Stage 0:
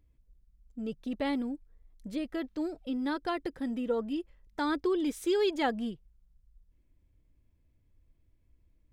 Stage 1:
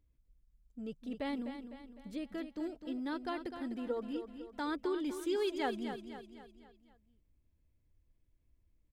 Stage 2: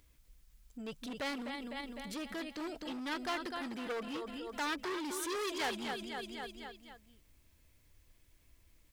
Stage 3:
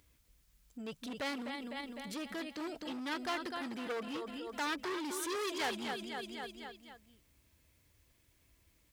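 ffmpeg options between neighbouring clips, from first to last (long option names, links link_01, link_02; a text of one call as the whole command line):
ffmpeg -i in.wav -af "aecho=1:1:253|506|759|1012|1265:0.355|0.17|0.0817|0.0392|0.0188,volume=-6.5dB" out.wav
ffmpeg -i in.wav -af "asoftclip=type=hard:threshold=-37dB,alimiter=level_in=22.5dB:limit=-24dB:level=0:latency=1:release=30,volume=-22.5dB,tiltshelf=frequency=660:gain=-7.5,volume=13dB" out.wav
ffmpeg -i in.wav -af "highpass=56" out.wav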